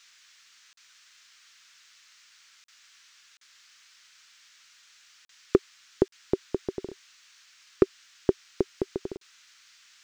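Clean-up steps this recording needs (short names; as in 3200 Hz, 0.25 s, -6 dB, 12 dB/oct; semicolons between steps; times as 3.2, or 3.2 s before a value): clip repair -6.5 dBFS; interpolate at 0.73/2.64/3.37/5.25/6.08/9.17, 43 ms; noise print and reduce 30 dB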